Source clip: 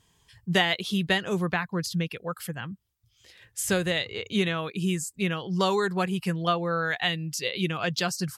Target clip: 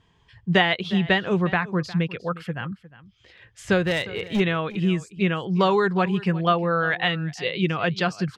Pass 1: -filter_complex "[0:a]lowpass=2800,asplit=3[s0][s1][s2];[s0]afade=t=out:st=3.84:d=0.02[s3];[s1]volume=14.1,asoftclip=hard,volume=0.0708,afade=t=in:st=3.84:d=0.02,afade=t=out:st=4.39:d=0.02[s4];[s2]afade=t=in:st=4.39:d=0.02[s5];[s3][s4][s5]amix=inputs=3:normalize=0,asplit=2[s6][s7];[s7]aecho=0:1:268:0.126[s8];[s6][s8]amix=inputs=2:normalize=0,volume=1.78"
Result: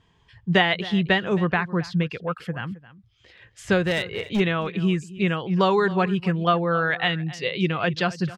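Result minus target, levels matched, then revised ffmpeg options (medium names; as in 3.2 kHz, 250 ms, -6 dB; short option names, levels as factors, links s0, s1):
echo 89 ms early
-filter_complex "[0:a]lowpass=2800,asplit=3[s0][s1][s2];[s0]afade=t=out:st=3.84:d=0.02[s3];[s1]volume=14.1,asoftclip=hard,volume=0.0708,afade=t=in:st=3.84:d=0.02,afade=t=out:st=4.39:d=0.02[s4];[s2]afade=t=in:st=4.39:d=0.02[s5];[s3][s4][s5]amix=inputs=3:normalize=0,asplit=2[s6][s7];[s7]aecho=0:1:357:0.126[s8];[s6][s8]amix=inputs=2:normalize=0,volume=1.78"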